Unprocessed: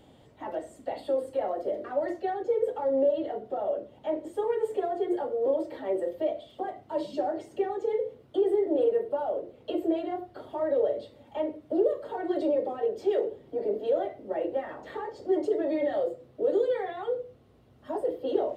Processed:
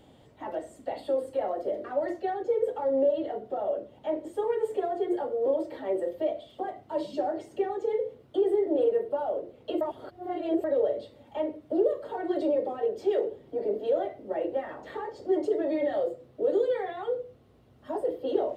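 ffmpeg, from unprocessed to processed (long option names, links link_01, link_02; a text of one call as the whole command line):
ffmpeg -i in.wav -filter_complex "[0:a]asplit=3[link_01][link_02][link_03];[link_01]atrim=end=9.812[link_04];[link_02]atrim=start=9.808:end=10.642,asetpts=PTS-STARTPTS,areverse[link_05];[link_03]atrim=start=10.638[link_06];[link_04][link_05]acrossfade=duration=0.004:curve1=hsin:curve2=hsin[link_07];[link_07][link_06]acrossfade=duration=0.004:curve1=hsin:curve2=hsin" out.wav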